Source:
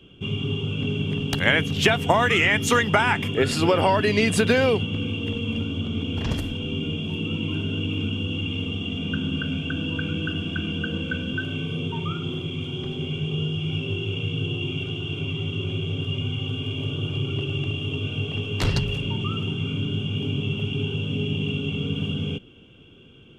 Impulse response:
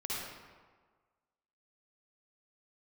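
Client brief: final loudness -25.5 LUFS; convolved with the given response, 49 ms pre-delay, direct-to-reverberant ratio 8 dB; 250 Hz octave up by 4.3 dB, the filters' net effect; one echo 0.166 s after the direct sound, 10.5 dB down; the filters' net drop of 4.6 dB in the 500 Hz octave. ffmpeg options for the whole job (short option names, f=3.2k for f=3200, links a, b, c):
-filter_complex "[0:a]equalizer=f=250:t=o:g=7.5,equalizer=f=500:t=o:g=-8.5,aecho=1:1:166:0.299,asplit=2[a][b];[1:a]atrim=start_sample=2205,adelay=49[c];[b][c]afir=irnorm=-1:irlink=0,volume=-11.5dB[d];[a][d]amix=inputs=2:normalize=0,volume=-2dB"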